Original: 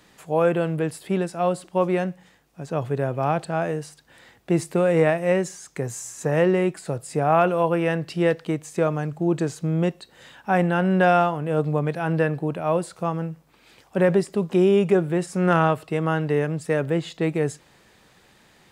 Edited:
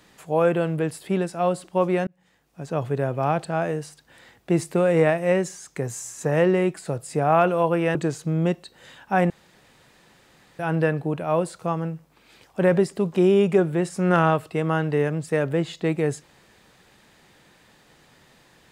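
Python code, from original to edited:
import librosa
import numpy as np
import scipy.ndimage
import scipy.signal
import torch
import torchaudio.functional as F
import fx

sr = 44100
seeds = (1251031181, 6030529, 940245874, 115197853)

y = fx.edit(x, sr, fx.fade_in_span(start_s=2.07, length_s=0.54),
    fx.cut(start_s=7.95, length_s=1.37),
    fx.room_tone_fill(start_s=10.67, length_s=1.29), tone=tone)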